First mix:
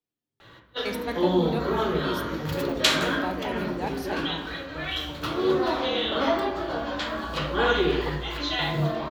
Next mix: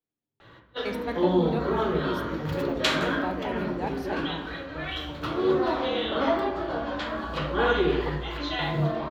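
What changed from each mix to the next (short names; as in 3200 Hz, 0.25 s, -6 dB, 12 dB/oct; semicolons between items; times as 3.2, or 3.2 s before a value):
master: add high shelf 3900 Hz -11 dB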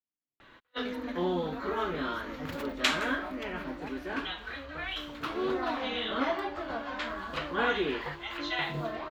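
speech -10.5 dB; reverb: off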